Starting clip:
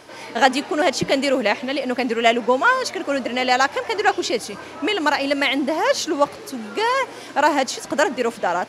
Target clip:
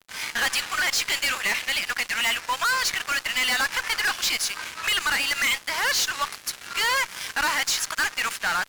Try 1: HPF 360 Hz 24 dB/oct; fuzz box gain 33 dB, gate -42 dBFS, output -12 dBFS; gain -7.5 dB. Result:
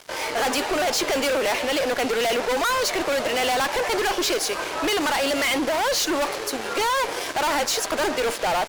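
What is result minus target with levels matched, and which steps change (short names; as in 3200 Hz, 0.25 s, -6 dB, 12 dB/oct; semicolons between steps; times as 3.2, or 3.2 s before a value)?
500 Hz band +16.5 dB
change: HPF 1300 Hz 24 dB/oct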